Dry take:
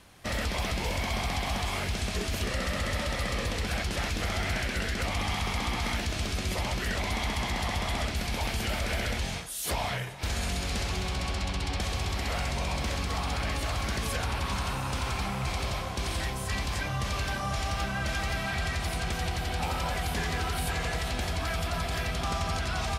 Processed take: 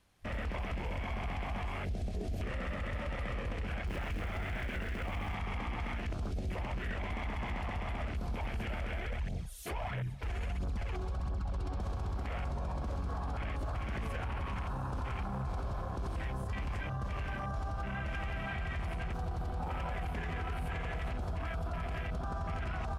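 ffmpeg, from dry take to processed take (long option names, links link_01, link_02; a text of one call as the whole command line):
ffmpeg -i in.wav -filter_complex "[0:a]asettb=1/sr,asplit=3[link_01][link_02][link_03];[link_01]atrim=end=3.874[link_04];[link_02]atrim=start=3.87:end=5.34,asetpts=PTS-STARTPTS,afade=type=in:duration=0.004:curve=qsin,afade=type=out:start_time=1.466:duration=0.004:curve=qsin,acrusher=bits=7:dc=4:mix=0:aa=0.000001[link_05];[link_03]atrim=start=5.336[link_06];[link_04][link_05]acrossfade=duration=0.004:curve1=hsin:curve2=qsin[link_07];[link_07][link_06]acrossfade=duration=0.004:curve1=qsin:curve2=hsin,asplit=3[link_08][link_09][link_10];[link_08]afade=type=out:start_time=8.98:duration=0.02[link_11];[link_09]aphaser=in_gain=1:out_gain=1:delay=3:decay=0.5:speed=1.5:type=triangular,afade=type=in:start_time=8.98:duration=0.02,afade=type=out:start_time=11.71:duration=0.02[link_12];[link_10]afade=type=in:start_time=11.71:duration=0.02[link_13];[link_11][link_12][link_13]amix=inputs=3:normalize=0,afwtdn=0.02,lowshelf=frequency=70:gain=7,alimiter=level_in=6dB:limit=-24dB:level=0:latency=1:release=50,volume=-6dB" out.wav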